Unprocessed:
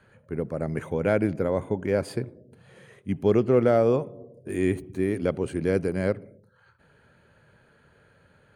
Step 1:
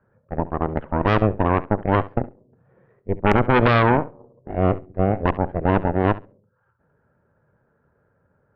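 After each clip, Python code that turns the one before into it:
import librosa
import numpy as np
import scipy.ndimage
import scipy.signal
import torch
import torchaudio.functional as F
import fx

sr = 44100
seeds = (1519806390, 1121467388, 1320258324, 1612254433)

y = scipy.signal.sosfilt(scipy.signal.butter(4, 1400.0, 'lowpass', fs=sr, output='sos'), x)
y = fx.cheby_harmonics(y, sr, harmonics=(3, 6, 7), levels_db=(-16, -8, -36), full_scale_db=-9.0)
y = fx.room_flutter(y, sr, wall_m=11.7, rt60_s=0.23)
y = F.gain(torch.from_numpy(y), 3.0).numpy()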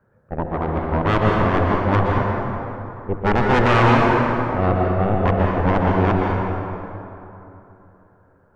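y = 10.0 ** (-14.0 / 20.0) * np.tanh(x / 10.0 ** (-14.0 / 20.0))
y = fx.rev_plate(y, sr, seeds[0], rt60_s=3.1, hf_ratio=0.55, predelay_ms=110, drr_db=-1.5)
y = F.gain(torch.from_numpy(y), 2.0).numpy()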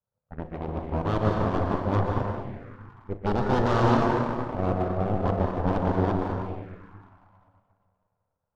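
y = fx.env_phaser(x, sr, low_hz=320.0, high_hz=2300.0, full_db=-17.0)
y = fx.power_curve(y, sr, exponent=1.4)
y = fx.doubler(y, sr, ms=39.0, db=-14.0)
y = F.gain(torch.from_numpy(y), -3.0).numpy()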